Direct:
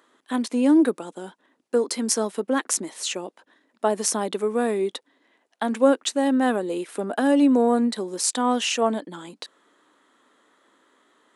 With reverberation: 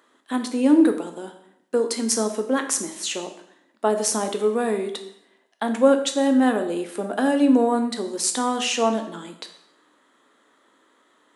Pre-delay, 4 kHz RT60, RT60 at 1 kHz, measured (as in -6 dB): 5 ms, 0.70 s, 0.75 s